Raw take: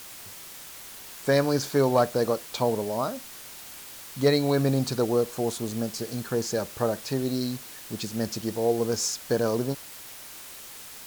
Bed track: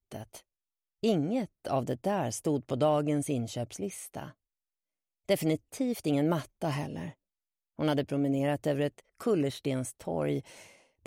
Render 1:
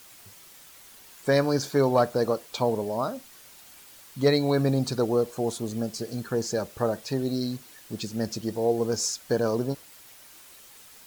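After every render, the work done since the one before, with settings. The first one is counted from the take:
broadband denoise 8 dB, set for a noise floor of −43 dBFS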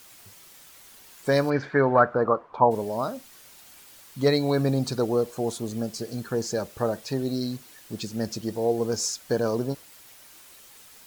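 0:01.49–0:02.70: low-pass with resonance 2,200 Hz → 900 Hz, resonance Q 4.3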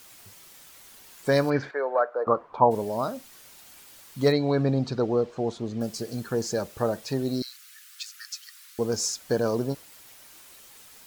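0:01.71–0:02.27: four-pole ladder high-pass 430 Hz, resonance 45%
0:04.32–0:05.81: high-frequency loss of the air 150 metres
0:07.42–0:08.79: Butterworth high-pass 1,200 Hz 96 dB per octave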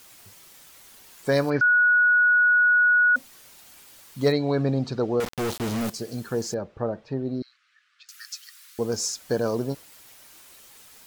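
0:01.61–0:03.16: beep over 1,460 Hz −15 dBFS
0:05.20–0:05.90: log-companded quantiser 2 bits
0:06.54–0:08.09: head-to-tape spacing loss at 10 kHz 38 dB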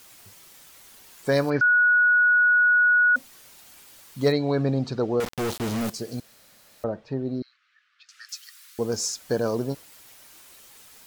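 0:06.20–0:06.84: fill with room tone
0:07.40–0:08.29: high-frequency loss of the air 89 metres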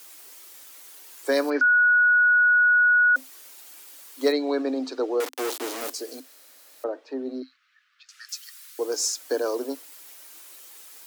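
Chebyshev high-pass filter 260 Hz, order 8
high-shelf EQ 6,100 Hz +6.5 dB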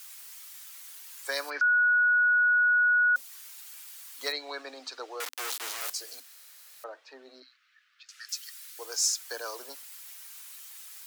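high-pass filter 1,200 Hz 12 dB per octave
dynamic equaliser 1,900 Hz, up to −4 dB, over −32 dBFS, Q 1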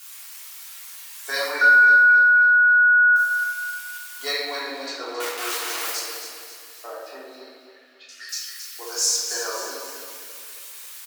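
repeating echo 270 ms, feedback 45%, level −9 dB
rectangular room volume 580 cubic metres, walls mixed, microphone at 3.3 metres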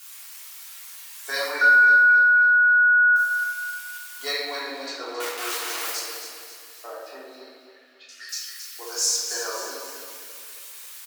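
level −1.5 dB

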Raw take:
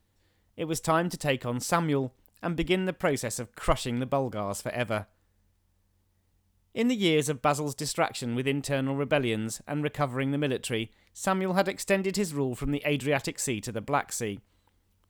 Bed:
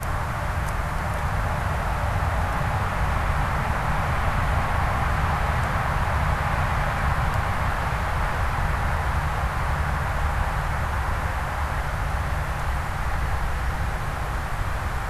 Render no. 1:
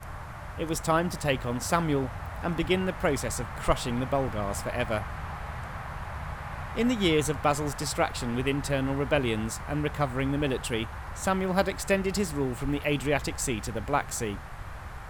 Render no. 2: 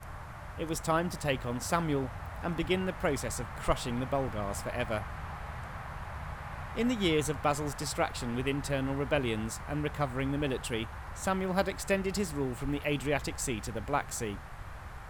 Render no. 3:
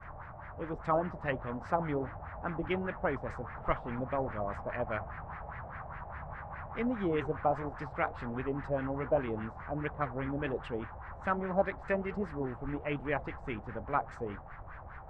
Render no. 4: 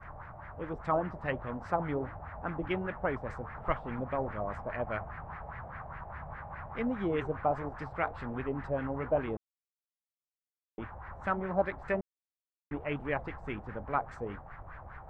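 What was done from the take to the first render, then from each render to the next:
mix in bed −13.5 dB
level −4 dB
flanger 1.3 Hz, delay 3.4 ms, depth 9.1 ms, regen −79%; auto-filter low-pass sine 4.9 Hz 640–2,000 Hz
0:09.37–0:10.78: silence; 0:12.01–0:12.71: silence

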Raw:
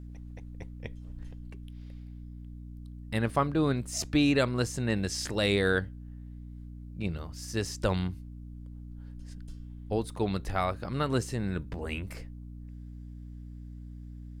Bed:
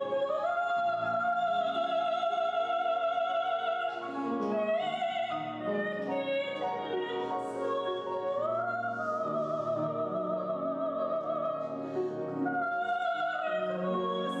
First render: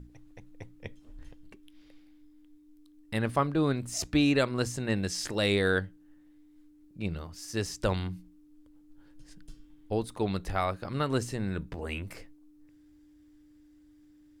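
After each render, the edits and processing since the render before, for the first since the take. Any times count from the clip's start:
mains-hum notches 60/120/180/240 Hz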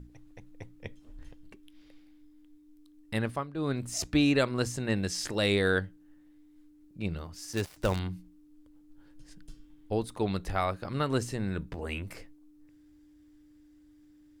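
0:03.18–0:03.80: duck −12 dB, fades 0.28 s
0:07.53–0:07.99: gap after every zero crossing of 0.088 ms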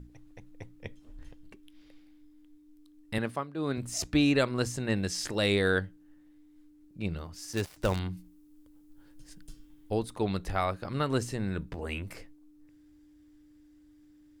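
0:03.18–0:03.78: high-pass filter 140 Hz
0:08.17–0:09.99: high-shelf EQ 7,800 Hz +10 dB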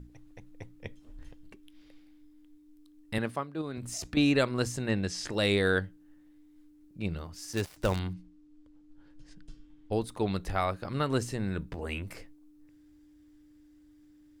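0:03.61–0:04.17: downward compressor 5 to 1, threshold −33 dBFS
0:04.90–0:05.32: high-frequency loss of the air 51 metres
0:08.13–0:09.92: high-frequency loss of the air 110 metres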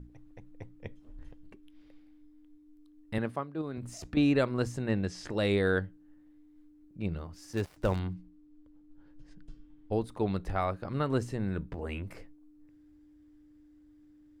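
high-shelf EQ 2,400 Hz −10.5 dB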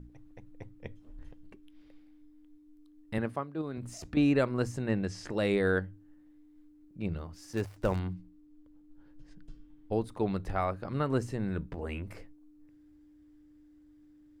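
mains-hum notches 50/100 Hz
dynamic equaliser 3,600 Hz, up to −5 dB, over −55 dBFS, Q 2.8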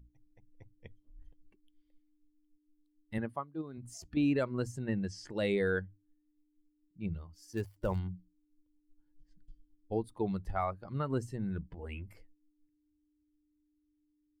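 spectral dynamics exaggerated over time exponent 1.5
brickwall limiter −21.5 dBFS, peak gain reduction 4.5 dB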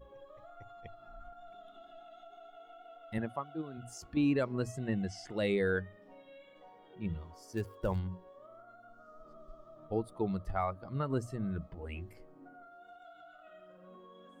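mix in bed −23.5 dB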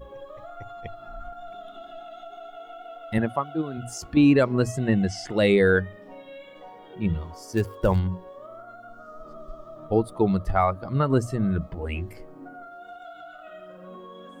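level +12 dB

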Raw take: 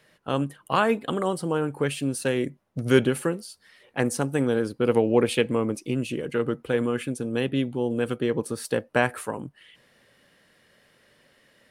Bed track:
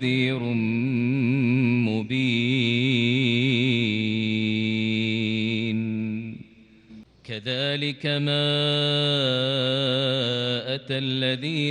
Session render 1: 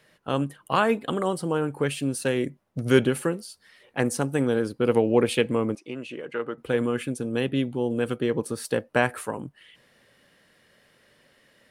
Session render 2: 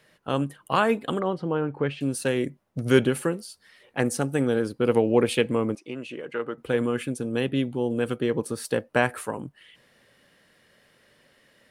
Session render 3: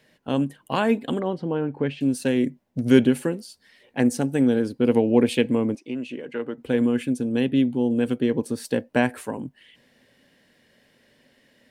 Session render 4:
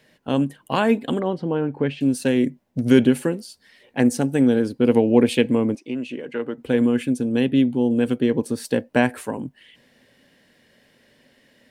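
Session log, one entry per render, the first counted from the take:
0:05.75–0:06.58: resonant band-pass 1,200 Hz, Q 0.59
0:01.19–0:02.01: high-frequency loss of the air 250 metres; 0:04.01–0:04.60: notch filter 1,000 Hz, Q 8.6
thirty-one-band graphic EQ 250 Hz +9 dB, 1,250 Hz −10 dB, 10,000 Hz −5 dB
level +2.5 dB; brickwall limiter −3 dBFS, peak gain reduction 2 dB

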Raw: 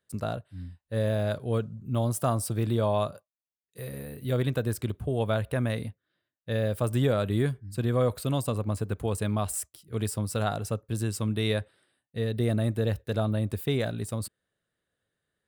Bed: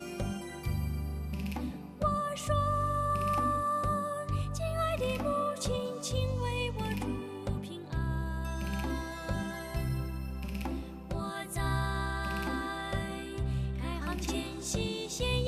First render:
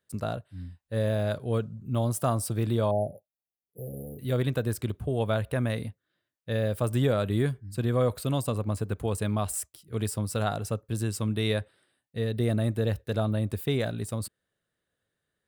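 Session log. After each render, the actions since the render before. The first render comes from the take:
0:02.91–0:04.19: linear-phase brick-wall band-stop 850–9,900 Hz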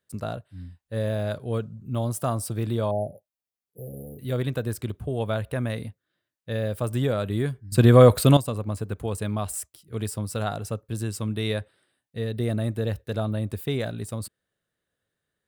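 0:07.72–0:08.37: clip gain +12 dB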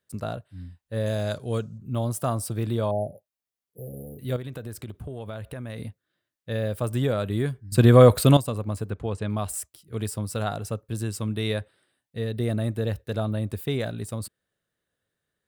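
0:01.06–0:01.78: parametric band 6,400 Hz +14 dB 1 octave
0:04.36–0:05.79: downward compressor, threshold −32 dBFS
0:08.90–0:09.30: high-frequency loss of the air 100 metres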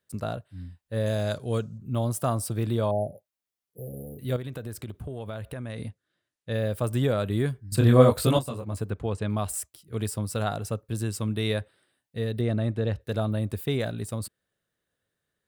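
0:05.55–0:06.54: Butterworth low-pass 11,000 Hz 48 dB per octave
0:07.76–0:08.73: micro pitch shift up and down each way 42 cents → 30 cents
0:12.41–0:13.01: high-frequency loss of the air 84 metres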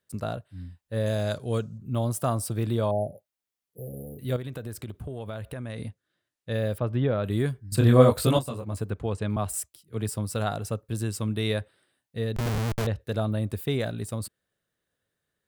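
0:06.78–0:07.24: high-frequency loss of the air 300 metres
0:09.36–0:10.09: multiband upward and downward expander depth 40%
0:12.36–0:12.87: comparator with hysteresis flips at −30.5 dBFS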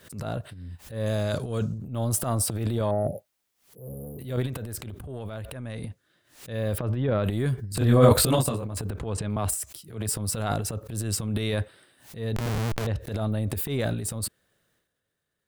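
transient designer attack −10 dB, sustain +11 dB
background raised ahead of every attack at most 130 dB per second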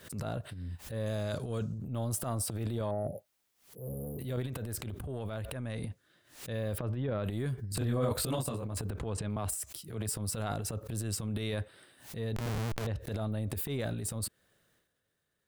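downward compressor 2.5 to 1, threshold −35 dBFS, peak gain reduction 15.5 dB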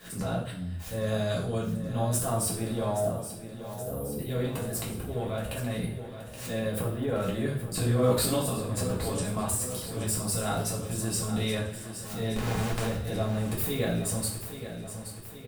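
repeating echo 824 ms, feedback 58%, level −11 dB
coupled-rooms reverb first 0.43 s, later 1.5 s, DRR −5.5 dB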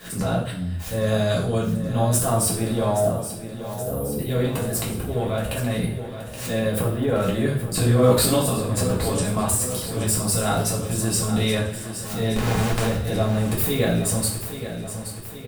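level +7.5 dB

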